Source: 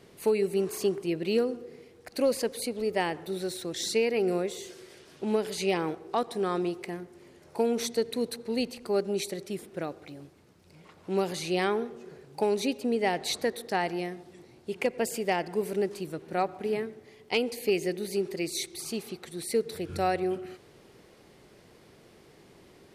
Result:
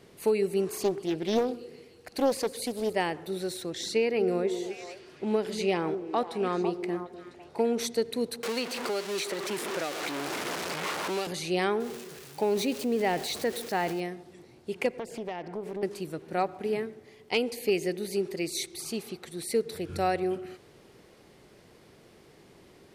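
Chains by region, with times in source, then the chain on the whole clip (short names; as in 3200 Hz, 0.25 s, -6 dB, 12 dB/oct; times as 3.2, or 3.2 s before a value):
0.83–2.93 thin delay 0.152 s, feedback 73%, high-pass 4800 Hz, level -12.5 dB + Doppler distortion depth 0.37 ms
3.7–7.79 high shelf 7200 Hz -9.5 dB + delay with a stepping band-pass 0.25 s, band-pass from 310 Hz, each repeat 1.4 oct, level -5 dB
8.43–11.27 zero-crossing step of -30 dBFS + weighting filter A + three-band squash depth 100%
11.8–14 switching spikes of -29 dBFS + LPF 3500 Hz 6 dB/oct + transient shaper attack -1 dB, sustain +5 dB
14.99–15.83 LPF 1900 Hz 6 dB/oct + compressor 4:1, threshold -32 dBFS + Doppler distortion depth 0.31 ms
whole clip: dry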